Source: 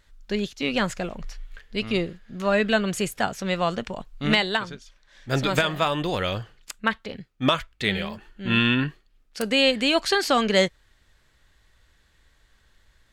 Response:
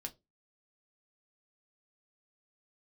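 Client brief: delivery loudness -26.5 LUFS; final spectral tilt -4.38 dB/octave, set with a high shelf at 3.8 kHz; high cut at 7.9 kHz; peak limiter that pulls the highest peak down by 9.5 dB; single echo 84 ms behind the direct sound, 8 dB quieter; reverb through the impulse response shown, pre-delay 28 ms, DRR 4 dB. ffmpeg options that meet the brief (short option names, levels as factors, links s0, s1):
-filter_complex "[0:a]lowpass=7900,highshelf=f=3800:g=4,alimiter=limit=0.168:level=0:latency=1,aecho=1:1:84:0.398,asplit=2[s0][s1];[1:a]atrim=start_sample=2205,adelay=28[s2];[s1][s2]afir=irnorm=-1:irlink=0,volume=0.891[s3];[s0][s3]amix=inputs=2:normalize=0,volume=0.891"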